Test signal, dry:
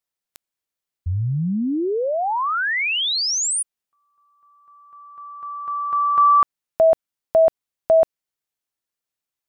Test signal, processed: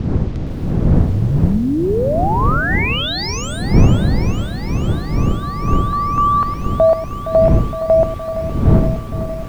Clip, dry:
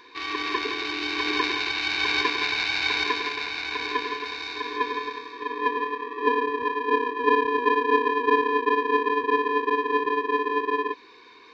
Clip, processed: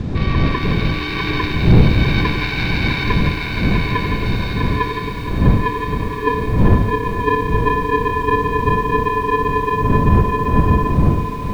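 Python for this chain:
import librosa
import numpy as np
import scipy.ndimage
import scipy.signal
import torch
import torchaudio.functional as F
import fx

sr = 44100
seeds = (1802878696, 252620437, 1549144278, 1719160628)

p1 = fx.dmg_wind(x, sr, seeds[0], corner_hz=160.0, level_db=-20.0)
p2 = fx.rider(p1, sr, range_db=5, speed_s=0.5)
p3 = p1 + (p2 * librosa.db_to_amplitude(1.5))
p4 = fx.quant_dither(p3, sr, seeds[1], bits=6, dither='none')
p5 = fx.air_absorb(p4, sr, metres=150.0)
p6 = p5 + fx.echo_single(p5, sr, ms=109, db=-13.5, dry=0)
p7 = fx.echo_crushed(p6, sr, ms=465, feedback_pct=80, bits=6, wet_db=-12)
y = p7 * librosa.db_to_amplitude(-3.5)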